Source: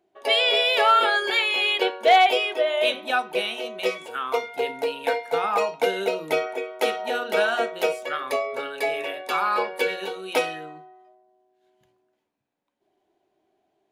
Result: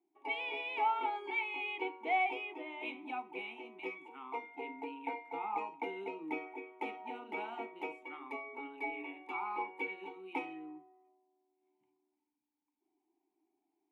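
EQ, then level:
formant filter u
low-shelf EQ 130 Hz −8.5 dB
parametric band 4,500 Hz −11.5 dB 0.99 octaves
+1.0 dB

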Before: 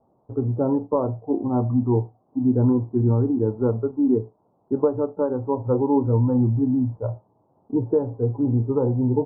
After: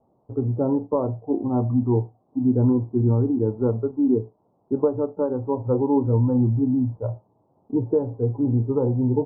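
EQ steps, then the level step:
low-pass filter 1,200 Hz 6 dB per octave
0.0 dB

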